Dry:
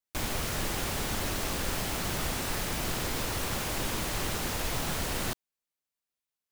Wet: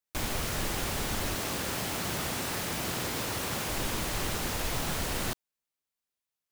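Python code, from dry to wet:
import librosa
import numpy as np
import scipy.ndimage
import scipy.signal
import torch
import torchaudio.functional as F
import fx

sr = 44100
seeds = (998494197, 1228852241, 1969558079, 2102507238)

y = fx.highpass(x, sr, hz=88.0, slope=12, at=(1.35, 3.69))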